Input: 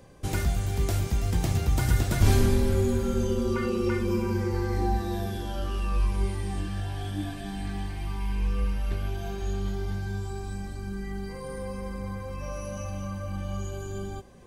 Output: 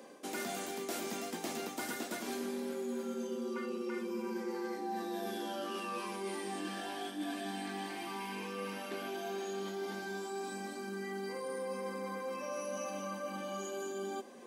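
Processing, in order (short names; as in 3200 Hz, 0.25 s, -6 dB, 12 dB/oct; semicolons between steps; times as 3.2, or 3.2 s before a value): elliptic high-pass 230 Hz, stop band 70 dB; reverse; compressor 10:1, threshold -38 dBFS, peak gain reduction 14.5 dB; reverse; gain +2.5 dB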